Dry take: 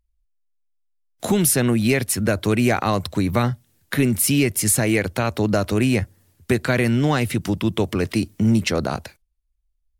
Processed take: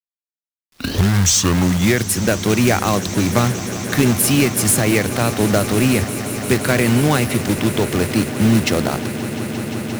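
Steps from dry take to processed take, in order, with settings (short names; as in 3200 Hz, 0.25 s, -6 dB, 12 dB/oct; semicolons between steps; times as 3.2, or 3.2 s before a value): tape start at the beginning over 2.16 s; companded quantiser 4-bit; swelling echo 0.175 s, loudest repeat 8, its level -18 dB; gain +2.5 dB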